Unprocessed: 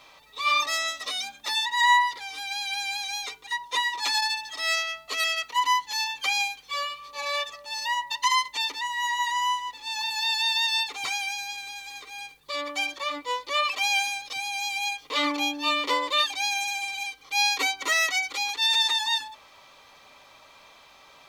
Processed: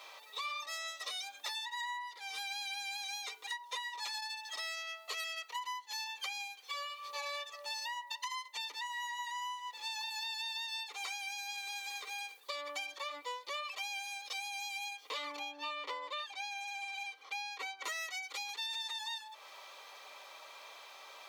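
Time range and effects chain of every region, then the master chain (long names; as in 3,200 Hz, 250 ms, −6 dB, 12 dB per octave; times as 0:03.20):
0:15.39–0:17.84: low-pass filter 2,100 Hz 6 dB per octave + low-shelf EQ 460 Hz −5 dB
whole clip: high-pass filter 400 Hz 24 dB per octave; high-shelf EQ 11,000 Hz +4 dB; downward compressor 12 to 1, threshold −38 dBFS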